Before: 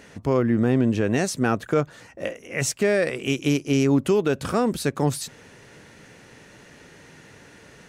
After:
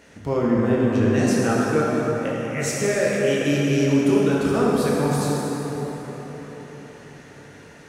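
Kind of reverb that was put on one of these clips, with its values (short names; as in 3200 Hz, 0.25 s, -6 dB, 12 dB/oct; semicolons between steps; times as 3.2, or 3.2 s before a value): plate-style reverb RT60 4.9 s, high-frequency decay 0.5×, pre-delay 0 ms, DRR -6 dB; gain -4.5 dB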